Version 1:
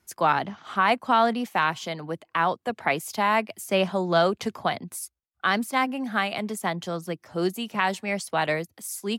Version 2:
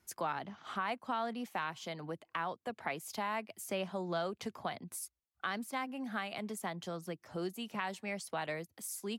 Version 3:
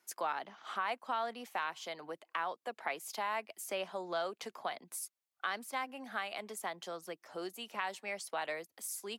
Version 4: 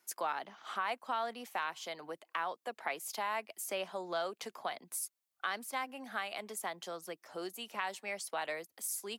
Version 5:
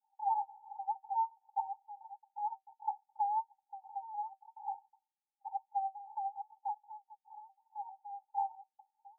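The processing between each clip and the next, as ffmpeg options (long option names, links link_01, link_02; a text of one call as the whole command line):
ffmpeg -i in.wav -af "acompressor=threshold=-38dB:ratio=2,volume=-4dB" out.wav
ffmpeg -i in.wav -af "highpass=430,volume=1dB" out.wav
ffmpeg -i in.wav -af "highshelf=frequency=7400:gain=5" out.wav
ffmpeg -i in.wav -af "asuperpass=centerf=840:order=20:qfactor=6.2,volume=9dB" out.wav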